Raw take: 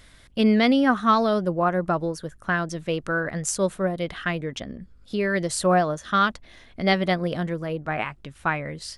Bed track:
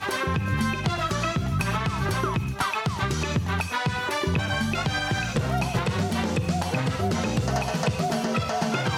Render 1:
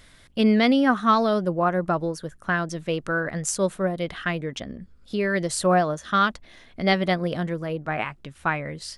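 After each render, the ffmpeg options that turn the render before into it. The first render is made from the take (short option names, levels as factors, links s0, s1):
-af "bandreject=f=50:t=h:w=4,bandreject=f=100:t=h:w=4"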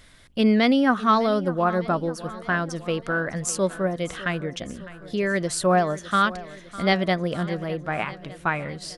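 -af "aecho=1:1:605|1210|1815|2420|3025:0.141|0.0819|0.0475|0.0276|0.016"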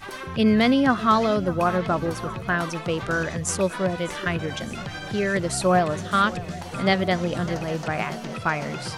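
-filter_complex "[1:a]volume=0.376[s0];[0:a][s0]amix=inputs=2:normalize=0"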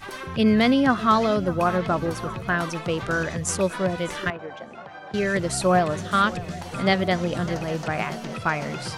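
-filter_complex "[0:a]asettb=1/sr,asplit=3[s0][s1][s2];[s0]atrim=end=4.304[s3];[s1]atrim=start=4.3:end=5.14,asetpts=PTS-STARTPTS,afade=t=in:d=0.004:c=qsin,afade=t=out:st=0.836:d=0.004:c=qsin,bandpass=f=780:t=q:w=1.3[s4];[s2]atrim=start=5.136[s5];[s3][s4]acrossfade=d=0.004:c1=hsin:c2=qsin[s6];[s6][s5]acrossfade=d=0.004:c1=qsin:c2=hsin"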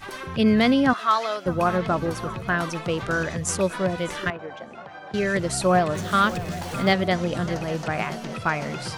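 -filter_complex "[0:a]asettb=1/sr,asplit=3[s0][s1][s2];[s0]atrim=end=0.934[s3];[s1]atrim=start=0.93:end=1.46,asetpts=PTS-STARTPTS,afade=t=in:d=0.004:c=qsin,afade=t=out:st=0.526:d=0.004:c=qsin,highpass=750[s4];[s2]atrim=start=1.456[s5];[s3][s4]acrossfade=d=0.004:c1=hsin:c2=qsin[s6];[s6][s5]acrossfade=d=0.004:c1=qsin:c2=hsin,asettb=1/sr,asplit=3[s7][s8][s9];[s7]atrim=end=5.954[s10];[s8]atrim=start=5.95:end=6.93,asetpts=PTS-STARTPTS,afade=t=in:d=0.004:c=qsin,afade=t=out:st=0.976:d=0.004:c=qsin,aeval=exprs='val(0)+0.5*0.0188*sgn(val(0))':c=same[s11];[s9]atrim=start=6.926[s12];[s10][s11]acrossfade=d=0.004:c1=hsin:c2=qsin[s13];[s13][s12]acrossfade=d=0.004:c1=qsin:c2=hsin"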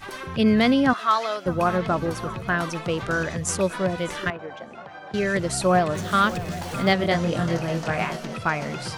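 -filter_complex "[0:a]asettb=1/sr,asplit=3[s0][s1][s2];[s0]atrim=end=6.984[s3];[s1]atrim=start=6.98:end=8.26,asetpts=PTS-STARTPTS,afade=t=in:d=0.004:c=qsin,afade=t=out:st=1.276:d=0.004:c=qsin,asplit=2[s4][s5];[s5]adelay=24,volume=0.631[s6];[s4][s6]amix=inputs=2:normalize=0,atrim=end_sample=56448[s7];[s2]atrim=start=8.256[s8];[s3][s7]acrossfade=d=0.004:c1=hsin:c2=qsin[s9];[s9][s8]acrossfade=d=0.004:c1=qsin:c2=hsin"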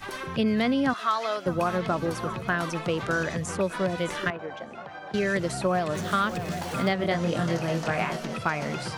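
-filter_complex "[0:a]acrossover=split=110|2800[s0][s1][s2];[s0]acompressor=threshold=0.00355:ratio=4[s3];[s1]acompressor=threshold=0.0794:ratio=4[s4];[s2]acompressor=threshold=0.0112:ratio=4[s5];[s3][s4][s5]amix=inputs=3:normalize=0"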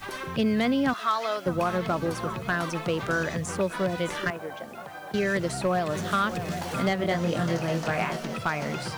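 -af "asoftclip=type=hard:threshold=0.15,acrusher=bits=8:mix=0:aa=0.000001"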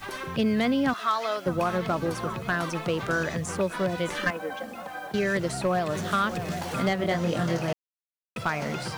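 -filter_complex "[0:a]asettb=1/sr,asplit=3[s0][s1][s2];[s0]atrim=end=4.154[s3];[s1]atrim=start=4.15:end=5.07,asetpts=PTS-STARTPTS,afade=t=in:d=0.004:c=qsin,afade=t=out:st=0.916:d=0.004:c=qsin,aecho=1:1:3.9:0.81,atrim=end_sample=40572[s4];[s2]atrim=start=5.066[s5];[s3][s4]acrossfade=d=0.004:c1=hsin:c2=qsin[s6];[s6][s5]acrossfade=d=0.004:c1=qsin:c2=hsin,asplit=3[s7][s8][s9];[s7]atrim=end=7.73,asetpts=PTS-STARTPTS,afade=t=out:st=7.726:d=0.004:c=hsin[s10];[s8]atrim=start=7.73:end=8.36,asetpts=PTS-STARTPTS,volume=0[s11];[s9]atrim=start=8.36,asetpts=PTS-STARTPTS,afade=t=in:d=0.004:c=hsin[s12];[s10][s11][s12]concat=n=3:v=0:a=1"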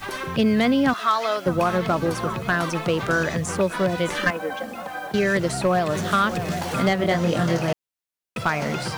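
-af "volume=1.78"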